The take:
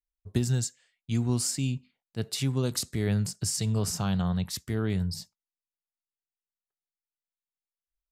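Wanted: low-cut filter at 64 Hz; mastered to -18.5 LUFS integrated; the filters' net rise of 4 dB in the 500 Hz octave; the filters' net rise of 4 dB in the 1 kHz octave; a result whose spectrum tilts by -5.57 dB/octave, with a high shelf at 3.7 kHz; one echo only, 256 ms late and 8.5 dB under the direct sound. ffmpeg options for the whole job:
-af "highpass=64,equalizer=f=500:t=o:g=4.5,equalizer=f=1000:t=o:g=4,highshelf=f=3700:g=-3.5,aecho=1:1:256:0.376,volume=3.35"

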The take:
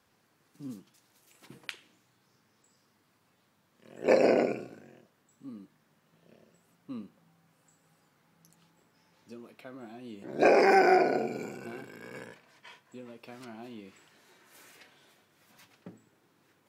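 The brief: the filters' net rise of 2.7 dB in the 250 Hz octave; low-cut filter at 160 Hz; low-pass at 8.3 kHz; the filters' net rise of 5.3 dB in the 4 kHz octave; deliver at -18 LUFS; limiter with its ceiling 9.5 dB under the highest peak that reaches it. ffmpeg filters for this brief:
-af "highpass=160,lowpass=8300,equalizer=f=250:t=o:g=4.5,equalizer=f=4000:t=o:g=7.5,volume=6.68,alimiter=limit=0.794:level=0:latency=1"

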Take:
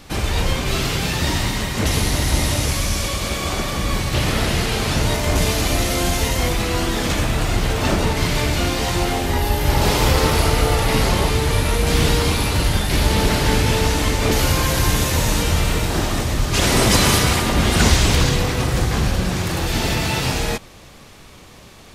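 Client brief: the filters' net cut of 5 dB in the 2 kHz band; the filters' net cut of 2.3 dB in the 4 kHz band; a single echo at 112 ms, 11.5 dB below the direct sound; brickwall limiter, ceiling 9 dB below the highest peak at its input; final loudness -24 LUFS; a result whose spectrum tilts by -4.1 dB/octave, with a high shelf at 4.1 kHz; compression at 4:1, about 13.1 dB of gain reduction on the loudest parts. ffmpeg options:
-af "equalizer=f=2000:t=o:g=-6.5,equalizer=f=4000:t=o:g=-4,highshelf=f=4100:g=5,acompressor=threshold=0.0447:ratio=4,alimiter=level_in=1.06:limit=0.0631:level=0:latency=1,volume=0.944,aecho=1:1:112:0.266,volume=2.99"

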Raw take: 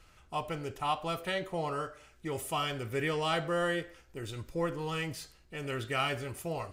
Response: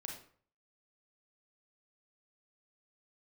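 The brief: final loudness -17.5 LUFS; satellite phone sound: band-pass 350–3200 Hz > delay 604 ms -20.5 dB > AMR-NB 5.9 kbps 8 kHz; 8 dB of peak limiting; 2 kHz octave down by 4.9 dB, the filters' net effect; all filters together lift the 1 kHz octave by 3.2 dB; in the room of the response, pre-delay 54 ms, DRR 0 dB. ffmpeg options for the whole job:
-filter_complex "[0:a]equalizer=f=1000:t=o:g=6.5,equalizer=f=2000:t=o:g=-7.5,alimiter=level_in=1.06:limit=0.0631:level=0:latency=1,volume=0.944,asplit=2[s0][s1];[1:a]atrim=start_sample=2205,adelay=54[s2];[s1][s2]afir=irnorm=-1:irlink=0,volume=1.33[s3];[s0][s3]amix=inputs=2:normalize=0,highpass=350,lowpass=3200,aecho=1:1:604:0.0944,volume=8.41" -ar 8000 -c:a libopencore_amrnb -b:a 5900

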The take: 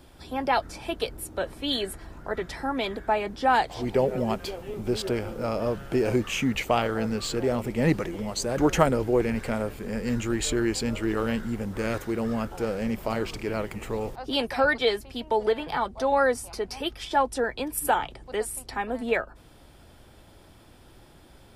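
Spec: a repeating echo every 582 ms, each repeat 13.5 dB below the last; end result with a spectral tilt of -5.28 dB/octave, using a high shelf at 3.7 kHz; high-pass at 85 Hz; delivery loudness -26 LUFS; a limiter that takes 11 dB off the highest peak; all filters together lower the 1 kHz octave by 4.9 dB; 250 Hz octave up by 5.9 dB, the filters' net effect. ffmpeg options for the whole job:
-af "highpass=85,equalizer=f=250:t=o:g=7.5,equalizer=f=1000:t=o:g=-7,highshelf=f=3700:g=-3,alimiter=limit=0.126:level=0:latency=1,aecho=1:1:582|1164:0.211|0.0444,volume=1.33"

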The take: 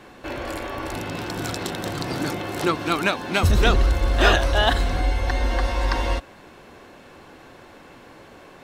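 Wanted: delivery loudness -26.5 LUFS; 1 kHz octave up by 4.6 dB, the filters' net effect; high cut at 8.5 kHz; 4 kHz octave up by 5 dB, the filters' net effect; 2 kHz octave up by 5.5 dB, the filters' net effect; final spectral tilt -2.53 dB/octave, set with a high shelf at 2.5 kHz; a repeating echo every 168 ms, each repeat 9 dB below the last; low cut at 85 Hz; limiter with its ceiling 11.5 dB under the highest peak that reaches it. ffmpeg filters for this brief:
-af "highpass=85,lowpass=8500,equalizer=f=1000:t=o:g=5,equalizer=f=2000:t=o:g=6,highshelf=f=2500:g=-5.5,equalizer=f=4000:t=o:g=8.5,alimiter=limit=0.251:level=0:latency=1,aecho=1:1:168|336|504|672:0.355|0.124|0.0435|0.0152,volume=0.75"

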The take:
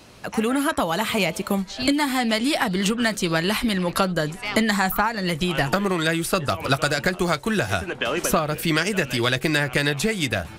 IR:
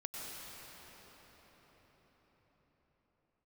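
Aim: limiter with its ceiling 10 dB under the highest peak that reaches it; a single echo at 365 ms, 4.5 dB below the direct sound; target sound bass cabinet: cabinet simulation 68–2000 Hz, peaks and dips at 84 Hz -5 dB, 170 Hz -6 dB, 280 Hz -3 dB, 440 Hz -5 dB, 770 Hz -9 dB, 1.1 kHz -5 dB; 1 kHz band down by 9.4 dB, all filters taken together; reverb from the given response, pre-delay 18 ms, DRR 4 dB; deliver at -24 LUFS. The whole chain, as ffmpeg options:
-filter_complex "[0:a]equalizer=f=1000:t=o:g=-6.5,alimiter=limit=0.15:level=0:latency=1,aecho=1:1:365:0.596,asplit=2[s0][s1];[1:a]atrim=start_sample=2205,adelay=18[s2];[s1][s2]afir=irnorm=-1:irlink=0,volume=0.596[s3];[s0][s3]amix=inputs=2:normalize=0,highpass=f=68:w=0.5412,highpass=f=68:w=1.3066,equalizer=f=84:t=q:w=4:g=-5,equalizer=f=170:t=q:w=4:g=-6,equalizer=f=280:t=q:w=4:g=-3,equalizer=f=440:t=q:w=4:g=-5,equalizer=f=770:t=q:w=4:g=-9,equalizer=f=1100:t=q:w=4:g=-5,lowpass=f=2000:w=0.5412,lowpass=f=2000:w=1.3066,volume=1.58"

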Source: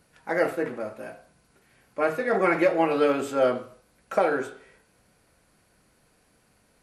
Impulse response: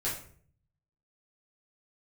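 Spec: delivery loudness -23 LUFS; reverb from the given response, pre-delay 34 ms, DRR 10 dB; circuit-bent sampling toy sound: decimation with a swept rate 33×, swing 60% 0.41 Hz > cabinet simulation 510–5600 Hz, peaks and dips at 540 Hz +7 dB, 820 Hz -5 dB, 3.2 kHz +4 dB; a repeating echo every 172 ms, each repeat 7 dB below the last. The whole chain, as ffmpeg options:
-filter_complex "[0:a]aecho=1:1:172|344|516|688|860:0.447|0.201|0.0905|0.0407|0.0183,asplit=2[s0][s1];[1:a]atrim=start_sample=2205,adelay=34[s2];[s1][s2]afir=irnorm=-1:irlink=0,volume=0.168[s3];[s0][s3]amix=inputs=2:normalize=0,acrusher=samples=33:mix=1:aa=0.000001:lfo=1:lforange=19.8:lforate=0.41,highpass=510,equalizer=f=540:t=q:w=4:g=7,equalizer=f=820:t=q:w=4:g=-5,equalizer=f=3200:t=q:w=4:g=4,lowpass=f=5600:w=0.5412,lowpass=f=5600:w=1.3066,volume=1.12"

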